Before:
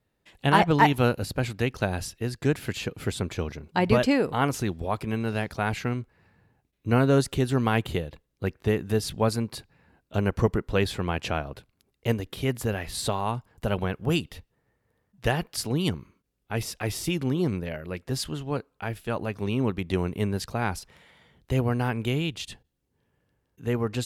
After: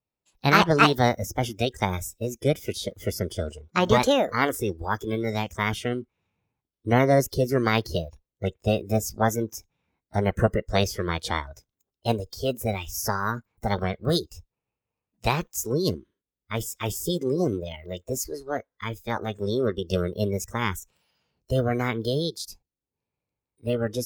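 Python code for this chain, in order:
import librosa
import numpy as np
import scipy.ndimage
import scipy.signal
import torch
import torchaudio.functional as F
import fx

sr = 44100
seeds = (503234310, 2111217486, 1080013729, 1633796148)

y = fx.formant_shift(x, sr, semitones=6)
y = fx.noise_reduce_blind(y, sr, reduce_db=17)
y = y * 10.0 ** (1.5 / 20.0)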